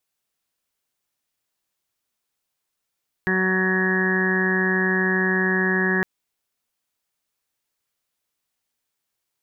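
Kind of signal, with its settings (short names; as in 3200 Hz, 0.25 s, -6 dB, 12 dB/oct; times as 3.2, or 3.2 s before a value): steady additive tone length 2.76 s, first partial 187 Hz, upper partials -1/-17.5/-12/-12.5/-12/-20/-13.5/1/-2.5 dB, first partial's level -23.5 dB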